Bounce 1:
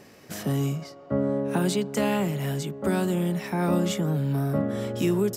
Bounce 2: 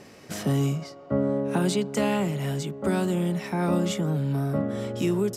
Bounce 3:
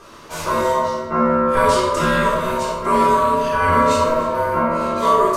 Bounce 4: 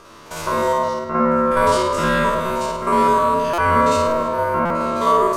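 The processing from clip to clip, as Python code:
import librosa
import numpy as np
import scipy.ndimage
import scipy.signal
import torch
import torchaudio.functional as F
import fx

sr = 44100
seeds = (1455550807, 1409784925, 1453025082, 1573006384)

y1 = scipy.signal.sosfilt(scipy.signal.butter(2, 11000.0, 'lowpass', fs=sr, output='sos'), x)
y1 = fx.notch(y1, sr, hz=1700.0, q=24.0)
y1 = fx.rider(y1, sr, range_db=3, speed_s=2.0)
y2 = y1 * np.sin(2.0 * np.pi * 790.0 * np.arange(len(y1)) / sr)
y2 = y2 + 10.0 ** (-18.5 / 20.0) * np.pad(y2, (int(294 * sr / 1000.0), 0))[:len(y2)]
y2 = fx.room_shoebox(y2, sr, seeds[0], volume_m3=570.0, walls='mixed', distance_m=3.8)
y2 = y2 * 10.0 ** (2.0 / 20.0)
y3 = fx.spec_steps(y2, sr, hold_ms=50)
y3 = y3 + 10.0 ** (-23.0 / 20.0) * np.pad(y3, (int(1000 * sr / 1000.0), 0))[:len(y3)]
y3 = fx.buffer_glitch(y3, sr, at_s=(3.53, 4.65), block=256, repeats=8)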